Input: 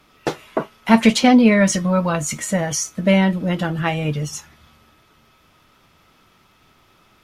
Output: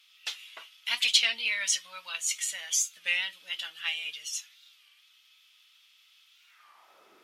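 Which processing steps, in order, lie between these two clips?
high-pass sweep 3.1 kHz -> 380 Hz, 6.35–7.11 s; warped record 33 1/3 rpm, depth 160 cents; trim -5 dB

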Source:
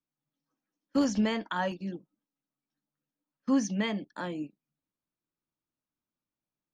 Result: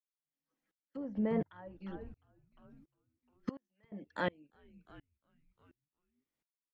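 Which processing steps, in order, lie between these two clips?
graphic EQ with 31 bands 500 Hz +6 dB, 2 kHz +9 dB, 3.15 kHz +4 dB; low-pass that closes with the level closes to 710 Hz, closed at -23.5 dBFS; 3.49–3.92 s: differentiator; on a send: frequency-shifting echo 353 ms, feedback 54%, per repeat -110 Hz, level -16 dB; on the sum: sawtooth tremolo in dB swelling 1.4 Hz, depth 33 dB; trim +3 dB

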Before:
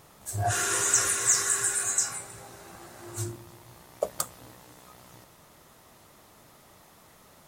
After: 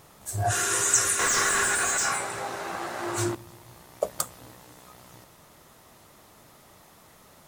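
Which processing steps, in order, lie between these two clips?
1.19–3.35 s: overdrive pedal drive 23 dB, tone 1.8 kHz, clips at -9.5 dBFS; trim +1.5 dB

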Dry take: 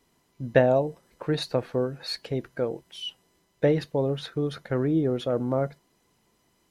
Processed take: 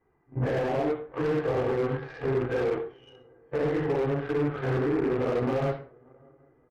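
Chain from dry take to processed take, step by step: phase randomisation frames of 200 ms; inverse Chebyshev low-pass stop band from 3.7 kHz, stop band 40 dB; comb 2.5 ms, depth 56%; compression 2:1, threshold -32 dBFS, peak gain reduction 10.5 dB; peak limiter -29 dBFS, peak gain reduction 12.5 dB; shuffle delay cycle 780 ms, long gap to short 3:1, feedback 41%, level -21.5 dB; Chebyshev shaper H 5 -19 dB, 7 -15 dB, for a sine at -28 dBFS; reverberation RT60 0.35 s, pre-delay 53 ms, DRR 10.5 dB; slew-rate limiter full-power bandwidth 16 Hz; trim +9 dB

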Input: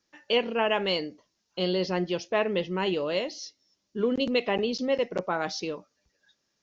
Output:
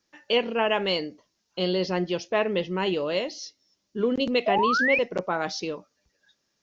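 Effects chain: painted sound rise, 4.46–4.99 s, 620–2600 Hz -25 dBFS; trim +1.5 dB

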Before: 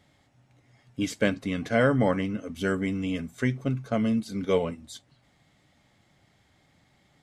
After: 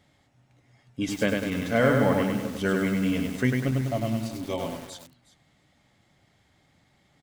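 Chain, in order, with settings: gain riding 2 s; 3.71–4.92 s: static phaser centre 300 Hz, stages 8; delay 365 ms -18 dB; bit-crushed delay 99 ms, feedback 55%, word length 7-bit, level -3 dB

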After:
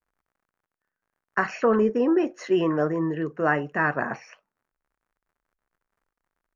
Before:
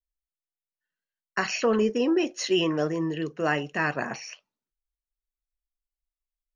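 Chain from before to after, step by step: crackle 68 per s -56 dBFS; resonant high shelf 2.3 kHz -13.5 dB, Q 1.5; trim +2 dB

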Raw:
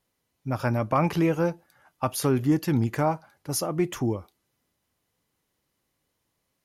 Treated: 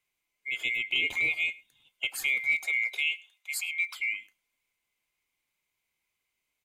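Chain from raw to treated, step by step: split-band scrambler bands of 2 kHz; 2.63–3.99 s: high-pass 350 Hz -> 1.1 kHz 24 dB/octave; on a send: delay 104 ms -23.5 dB; on the sum: trim -5.5 dB

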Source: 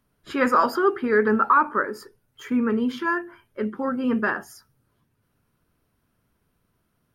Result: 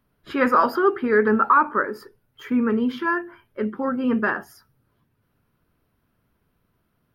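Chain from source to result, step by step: peaking EQ 7.6 kHz -11 dB 0.92 oct; trim +1.5 dB

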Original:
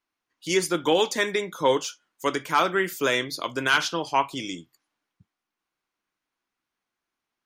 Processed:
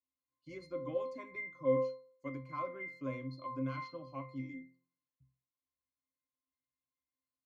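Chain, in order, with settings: pitch-class resonator C, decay 0.35 s; de-hum 173.2 Hz, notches 8; endings held to a fixed fall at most 290 dB/s; trim +1.5 dB

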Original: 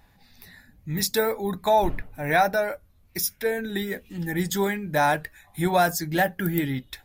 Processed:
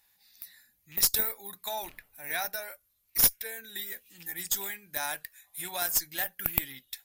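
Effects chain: rattle on loud lows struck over -27 dBFS, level -31 dBFS; pre-emphasis filter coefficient 0.97; Chebyshev shaper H 2 -6 dB, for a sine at -9 dBFS; trim +2 dB

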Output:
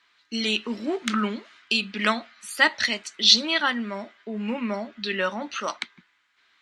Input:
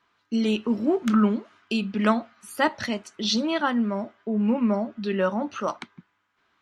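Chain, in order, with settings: graphic EQ 125/2000/4000/8000 Hz -9/+11/+12/+10 dB; trim -4.5 dB

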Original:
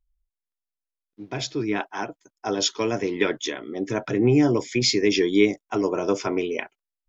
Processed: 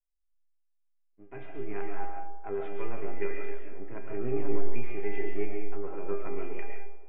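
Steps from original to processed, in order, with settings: partial rectifier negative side -7 dB; steep low-pass 2.5 kHz 48 dB/octave; de-hum 74.05 Hz, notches 34; level rider gain up to 9 dB; feedback comb 400 Hz, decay 0.55 s, mix 90%; feedback echo behind a band-pass 86 ms, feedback 81%, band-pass 650 Hz, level -17 dB; algorithmic reverb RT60 0.4 s, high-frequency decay 0.65×, pre-delay 90 ms, DRR 2.5 dB; trim -3.5 dB

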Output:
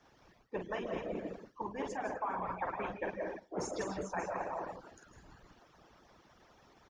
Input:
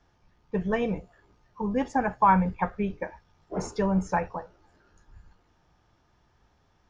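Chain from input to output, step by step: on a send: reverse bouncing-ball echo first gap 50 ms, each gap 1.15×, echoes 5; on the sum: peak limiter -17 dBFS, peak gain reduction 10 dB; high-pass 170 Hz 6 dB/octave; peaking EQ 340 Hz +5 dB 0.44 oct; hum notches 50/100/150/200/250/300/350/400 Hz; algorithmic reverb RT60 0.44 s, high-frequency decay 0.35×, pre-delay 115 ms, DRR 1 dB; harmonic-percussive split harmonic -17 dB; reverse; compression 4:1, threshold -44 dBFS, peak gain reduction 15.5 dB; reverse; reverb removal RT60 0.51 s; trim +8 dB

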